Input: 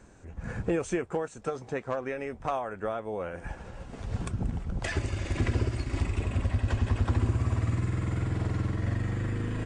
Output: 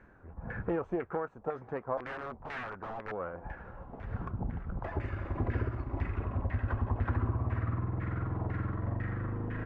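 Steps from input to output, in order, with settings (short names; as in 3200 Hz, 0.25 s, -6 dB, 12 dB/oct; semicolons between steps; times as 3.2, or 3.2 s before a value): self-modulated delay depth 0.11 ms; 1.97–3.12 wrapped overs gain 30.5 dB; LFO low-pass saw down 2 Hz 830–1900 Hz; gain -5 dB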